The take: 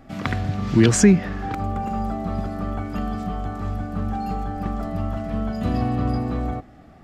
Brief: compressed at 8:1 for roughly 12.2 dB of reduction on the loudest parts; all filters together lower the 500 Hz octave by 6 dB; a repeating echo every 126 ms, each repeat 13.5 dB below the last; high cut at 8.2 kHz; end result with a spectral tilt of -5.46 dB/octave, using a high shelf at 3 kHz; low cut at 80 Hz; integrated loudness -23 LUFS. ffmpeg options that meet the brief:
-af "highpass=80,lowpass=8200,equalizer=f=500:t=o:g=-9,highshelf=f=3000:g=5,acompressor=threshold=0.0708:ratio=8,aecho=1:1:126|252:0.211|0.0444,volume=2.11"

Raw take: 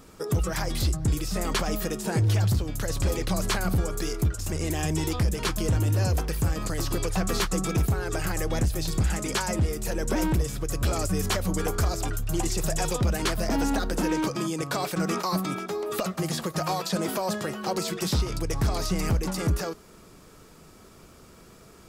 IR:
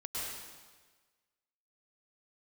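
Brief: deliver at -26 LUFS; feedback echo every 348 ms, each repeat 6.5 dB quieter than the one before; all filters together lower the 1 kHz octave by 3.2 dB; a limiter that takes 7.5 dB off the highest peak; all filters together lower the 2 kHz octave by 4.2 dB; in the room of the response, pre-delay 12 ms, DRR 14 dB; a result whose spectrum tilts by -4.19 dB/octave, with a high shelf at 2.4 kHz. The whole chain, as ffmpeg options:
-filter_complex "[0:a]equalizer=f=1000:t=o:g=-3.5,equalizer=f=2000:t=o:g=-8,highshelf=f=2400:g=7,alimiter=limit=0.119:level=0:latency=1,aecho=1:1:348|696|1044|1392|1740|2088:0.473|0.222|0.105|0.0491|0.0231|0.0109,asplit=2[s0][s1];[1:a]atrim=start_sample=2205,adelay=12[s2];[s1][s2]afir=irnorm=-1:irlink=0,volume=0.15[s3];[s0][s3]amix=inputs=2:normalize=0,volume=1.06"

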